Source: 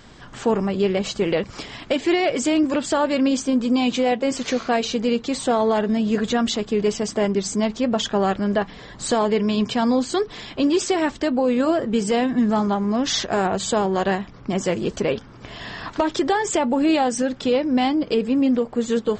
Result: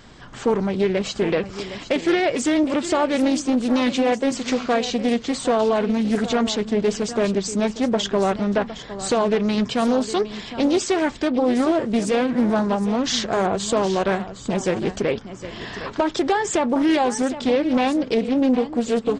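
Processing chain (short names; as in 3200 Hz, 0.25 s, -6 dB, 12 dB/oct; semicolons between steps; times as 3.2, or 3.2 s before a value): on a send: echo 0.761 s -13 dB; on the sum: Doppler distortion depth 0.4 ms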